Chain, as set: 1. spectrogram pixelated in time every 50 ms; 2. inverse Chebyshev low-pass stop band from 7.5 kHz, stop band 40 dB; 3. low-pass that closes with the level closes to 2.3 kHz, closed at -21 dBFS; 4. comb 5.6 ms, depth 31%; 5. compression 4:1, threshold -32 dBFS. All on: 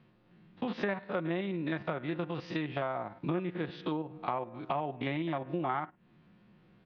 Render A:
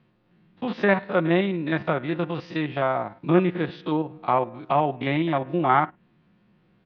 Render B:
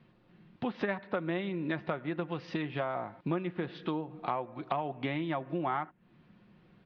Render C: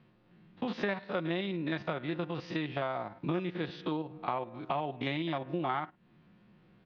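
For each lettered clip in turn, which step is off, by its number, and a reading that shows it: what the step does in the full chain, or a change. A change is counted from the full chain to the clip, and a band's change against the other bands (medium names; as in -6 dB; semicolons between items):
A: 5, mean gain reduction 8.5 dB; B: 1, crest factor change +3.0 dB; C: 3, 4 kHz band +4.5 dB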